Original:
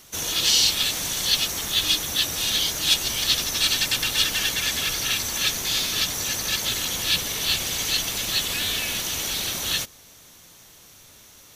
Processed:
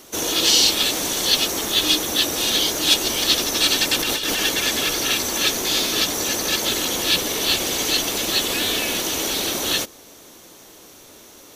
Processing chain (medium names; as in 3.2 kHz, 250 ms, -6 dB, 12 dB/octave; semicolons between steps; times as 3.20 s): FFT filter 140 Hz 0 dB, 320 Hz +15 dB, 1.9 kHz +4 dB; 3.99–4.39 s: compressor with a negative ratio -22 dBFS, ratio -1; trim -1 dB